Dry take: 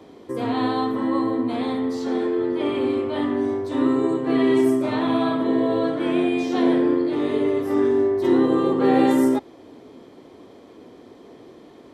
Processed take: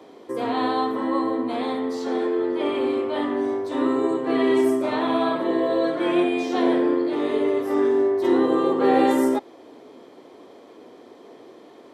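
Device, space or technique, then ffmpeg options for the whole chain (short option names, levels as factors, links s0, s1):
filter by subtraction: -filter_complex "[0:a]asettb=1/sr,asplit=3[s0][s1][s2];[s0]atrim=end=5.354[s3];[s1]atrim=start=5.35:end=6.24,asetpts=PTS-STARTPTS,afade=t=in:d=0.004:c=qsin,afade=t=out:st=0.886:d=0.004:c=qsin,aecho=1:1:5.6:0.57,atrim=end_sample=39249[s4];[s2]atrim=start=6.236[s5];[s3][s4]acrossfade=d=0.004:c1=hsin:c2=qsin[s6];[s6][s5]acrossfade=d=0.004:c1=qsin:c2=hsin,asplit=2[s7][s8];[s8]lowpass=570,volume=-1[s9];[s7][s9]amix=inputs=2:normalize=0"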